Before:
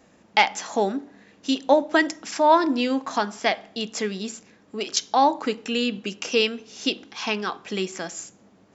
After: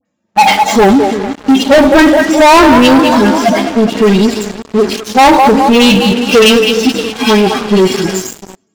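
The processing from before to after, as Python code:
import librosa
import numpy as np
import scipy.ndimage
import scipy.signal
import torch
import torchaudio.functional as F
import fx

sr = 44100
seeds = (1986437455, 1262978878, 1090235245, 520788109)

p1 = fx.hpss_only(x, sr, part='harmonic')
p2 = fx.level_steps(p1, sr, step_db=19)
p3 = p1 + (p2 * 10.0 ** (-1.5 / 20.0))
p4 = fx.echo_split(p3, sr, split_hz=390.0, low_ms=344, high_ms=207, feedback_pct=52, wet_db=-12.5)
p5 = fx.transient(p4, sr, attack_db=0, sustain_db=4)
p6 = fx.leveller(p5, sr, passes=1)
p7 = fx.dispersion(p6, sr, late='highs', ms=56.0, hz=1700.0)
y = fx.leveller(p7, sr, passes=5)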